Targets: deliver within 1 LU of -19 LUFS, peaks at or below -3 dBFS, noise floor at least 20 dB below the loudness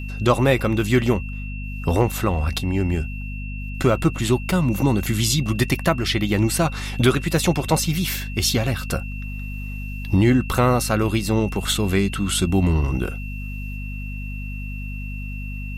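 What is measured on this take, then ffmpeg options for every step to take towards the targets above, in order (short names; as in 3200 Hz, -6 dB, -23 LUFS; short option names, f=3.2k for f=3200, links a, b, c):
hum 50 Hz; harmonics up to 250 Hz; hum level -28 dBFS; steady tone 2700 Hz; tone level -37 dBFS; loudness -22.0 LUFS; peak -3.0 dBFS; loudness target -19.0 LUFS
-> -af "bandreject=f=50:t=h:w=4,bandreject=f=100:t=h:w=4,bandreject=f=150:t=h:w=4,bandreject=f=200:t=h:w=4,bandreject=f=250:t=h:w=4"
-af "bandreject=f=2.7k:w=30"
-af "volume=3dB,alimiter=limit=-3dB:level=0:latency=1"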